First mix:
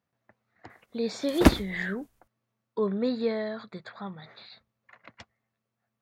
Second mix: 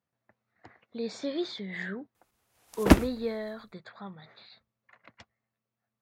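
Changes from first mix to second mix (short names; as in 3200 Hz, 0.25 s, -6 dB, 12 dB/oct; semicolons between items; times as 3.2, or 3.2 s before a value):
speech -4.5 dB; background: entry +1.45 s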